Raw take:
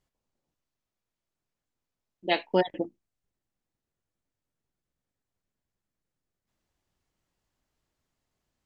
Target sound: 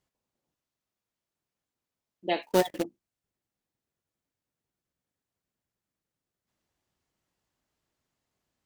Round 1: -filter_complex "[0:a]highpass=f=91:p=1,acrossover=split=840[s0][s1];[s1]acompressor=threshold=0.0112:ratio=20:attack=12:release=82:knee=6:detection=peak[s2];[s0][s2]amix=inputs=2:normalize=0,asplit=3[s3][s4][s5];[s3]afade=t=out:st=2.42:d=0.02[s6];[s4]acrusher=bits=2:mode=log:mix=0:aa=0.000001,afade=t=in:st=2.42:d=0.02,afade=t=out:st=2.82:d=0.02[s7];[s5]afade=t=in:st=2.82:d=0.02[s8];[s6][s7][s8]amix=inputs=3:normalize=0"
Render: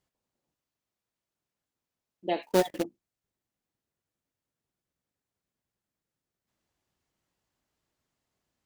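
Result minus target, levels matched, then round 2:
compression: peak gain reduction +6.5 dB
-filter_complex "[0:a]highpass=f=91:p=1,acrossover=split=840[s0][s1];[s1]acompressor=threshold=0.0251:ratio=20:attack=12:release=82:knee=6:detection=peak[s2];[s0][s2]amix=inputs=2:normalize=0,asplit=3[s3][s4][s5];[s3]afade=t=out:st=2.42:d=0.02[s6];[s4]acrusher=bits=2:mode=log:mix=0:aa=0.000001,afade=t=in:st=2.42:d=0.02,afade=t=out:st=2.82:d=0.02[s7];[s5]afade=t=in:st=2.82:d=0.02[s8];[s6][s7][s8]amix=inputs=3:normalize=0"

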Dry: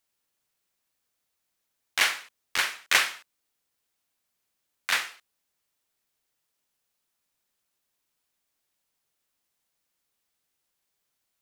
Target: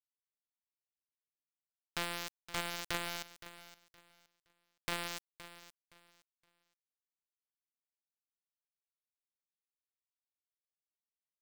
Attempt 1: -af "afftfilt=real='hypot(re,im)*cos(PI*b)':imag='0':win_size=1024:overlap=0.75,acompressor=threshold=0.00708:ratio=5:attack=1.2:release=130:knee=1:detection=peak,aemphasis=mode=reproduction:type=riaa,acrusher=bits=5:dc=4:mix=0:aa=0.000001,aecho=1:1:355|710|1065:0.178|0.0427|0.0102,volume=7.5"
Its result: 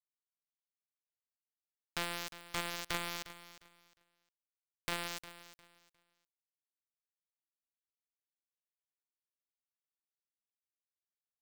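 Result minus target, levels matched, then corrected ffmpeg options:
echo 163 ms early
-af "afftfilt=real='hypot(re,im)*cos(PI*b)':imag='0':win_size=1024:overlap=0.75,acompressor=threshold=0.00708:ratio=5:attack=1.2:release=130:knee=1:detection=peak,aemphasis=mode=reproduction:type=riaa,acrusher=bits=5:dc=4:mix=0:aa=0.000001,aecho=1:1:518|1036|1554:0.178|0.0427|0.0102,volume=7.5"

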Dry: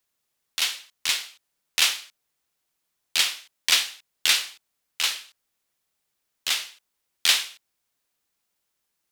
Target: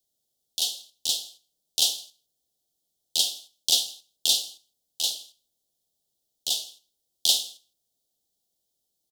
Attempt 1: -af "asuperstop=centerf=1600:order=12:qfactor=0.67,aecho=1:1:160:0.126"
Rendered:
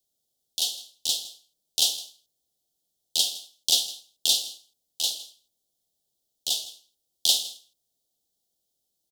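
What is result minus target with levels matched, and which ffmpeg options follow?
echo-to-direct +8 dB
-af "asuperstop=centerf=1600:order=12:qfactor=0.67,aecho=1:1:160:0.0501"

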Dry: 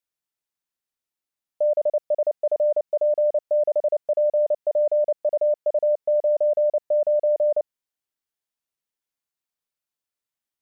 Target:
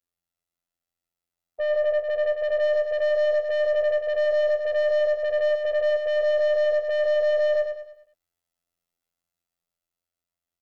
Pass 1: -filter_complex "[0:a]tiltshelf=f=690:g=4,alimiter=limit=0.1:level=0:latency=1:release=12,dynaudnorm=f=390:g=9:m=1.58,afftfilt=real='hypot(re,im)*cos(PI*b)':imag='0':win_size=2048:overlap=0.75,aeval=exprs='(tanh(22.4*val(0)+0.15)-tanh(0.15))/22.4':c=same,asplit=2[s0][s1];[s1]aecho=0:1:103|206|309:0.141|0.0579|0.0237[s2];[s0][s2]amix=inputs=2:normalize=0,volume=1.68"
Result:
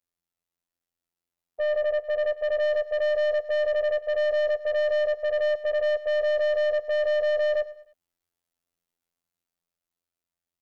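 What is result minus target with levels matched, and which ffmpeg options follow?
echo-to-direct -10.5 dB
-filter_complex "[0:a]tiltshelf=f=690:g=4,alimiter=limit=0.1:level=0:latency=1:release=12,dynaudnorm=f=390:g=9:m=1.58,afftfilt=real='hypot(re,im)*cos(PI*b)':imag='0':win_size=2048:overlap=0.75,aeval=exprs='(tanh(22.4*val(0)+0.15)-tanh(0.15))/22.4':c=same,asplit=2[s0][s1];[s1]aecho=0:1:103|206|309|412|515:0.473|0.194|0.0795|0.0326|0.0134[s2];[s0][s2]amix=inputs=2:normalize=0,volume=1.68"

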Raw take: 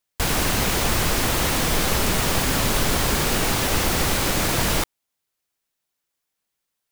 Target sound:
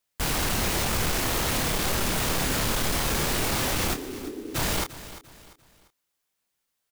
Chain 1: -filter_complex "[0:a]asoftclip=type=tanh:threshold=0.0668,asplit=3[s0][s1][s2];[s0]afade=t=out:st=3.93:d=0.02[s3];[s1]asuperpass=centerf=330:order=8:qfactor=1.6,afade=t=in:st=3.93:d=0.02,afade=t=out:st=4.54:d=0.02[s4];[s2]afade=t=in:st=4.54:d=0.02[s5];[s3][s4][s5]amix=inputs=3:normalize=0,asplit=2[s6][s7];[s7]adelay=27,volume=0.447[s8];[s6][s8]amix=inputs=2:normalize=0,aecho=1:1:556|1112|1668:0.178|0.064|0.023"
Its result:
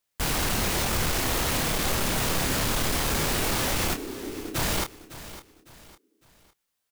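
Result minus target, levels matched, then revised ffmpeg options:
echo 210 ms late
-filter_complex "[0:a]asoftclip=type=tanh:threshold=0.0668,asplit=3[s0][s1][s2];[s0]afade=t=out:st=3.93:d=0.02[s3];[s1]asuperpass=centerf=330:order=8:qfactor=1.6,afade=t=in:st=3.93:d=0.02,afade=t=out:st=4.54:d=0.02[s4];[s2]afade=t=in:st=4.54:d=0.02[s5];[s3][s4][s5]amix=inputs=3:normalize=0,asplit=2[s6][s7];[s7]adelay=27,volume=0.447[s8];[s6][s8]amix=inputs=2:normalize=0,aecho=1:1:346|692|1038:0.178|0.064|0.023"

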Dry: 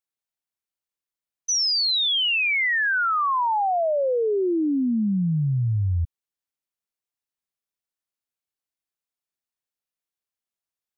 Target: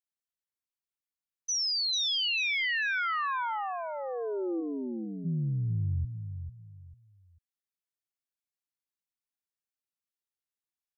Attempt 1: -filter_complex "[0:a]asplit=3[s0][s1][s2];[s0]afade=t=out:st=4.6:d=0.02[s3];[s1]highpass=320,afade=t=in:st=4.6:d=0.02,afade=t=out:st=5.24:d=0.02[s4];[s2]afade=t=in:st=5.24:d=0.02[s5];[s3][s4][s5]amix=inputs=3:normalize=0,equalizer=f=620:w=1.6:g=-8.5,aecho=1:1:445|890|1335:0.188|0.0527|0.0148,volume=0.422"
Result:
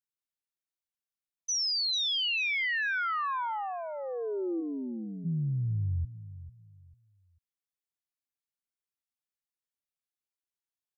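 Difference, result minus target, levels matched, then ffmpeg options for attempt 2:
echo-to-direct -6 dB
-filter_complex "[0:a]asplit=3[s0][s1][s2];[s0]afade=t=out:st=4.6:d=0.02[s3];[s1]highpass=320,afade=t=in:st=4.6:d=0.02,afade=t=out:st=5.24:d=0.02[s4];[s2]afade=t=in:st=5.24:d=0.02[s5];[s3][s4][s5]amix=inputs=3:normalize=0,equalizer=f=620:w=1.6:g=-8.5,aecho=1:1:445|890|1335:0.376|0.105|0.0295,volume=0.422"

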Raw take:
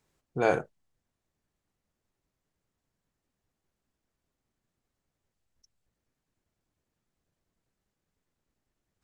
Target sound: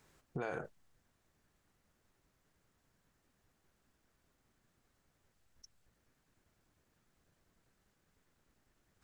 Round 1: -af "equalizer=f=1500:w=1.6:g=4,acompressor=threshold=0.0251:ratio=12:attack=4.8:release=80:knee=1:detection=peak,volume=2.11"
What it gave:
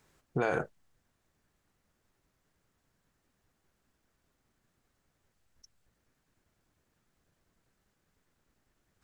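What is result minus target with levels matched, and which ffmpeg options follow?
compression: peak gain reduction -10 dB
-af "equalizer=f=1500:w=1.6:g=4,acompressor=threshold=0.00708:ratio=12:attack=4.8:release=80:knee=1:detection=peak,volume=2.11"

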